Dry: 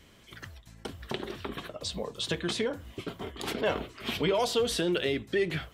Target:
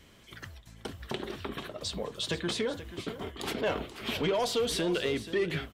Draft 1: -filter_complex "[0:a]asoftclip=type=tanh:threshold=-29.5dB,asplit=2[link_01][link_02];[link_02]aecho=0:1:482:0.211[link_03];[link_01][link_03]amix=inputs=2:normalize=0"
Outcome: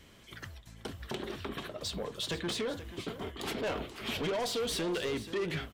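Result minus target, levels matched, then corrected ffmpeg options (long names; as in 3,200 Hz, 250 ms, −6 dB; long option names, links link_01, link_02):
soft clipping: distortion +10 dB
-filter_complex "[0:a]asoftclip=type=tanh:threshold=-21dB,asplit=2[link_01][link_02];[link_02]aecho=0:1:482:0.211[link_03];[link_01][link_03]amix=inputs=2:normalize=0"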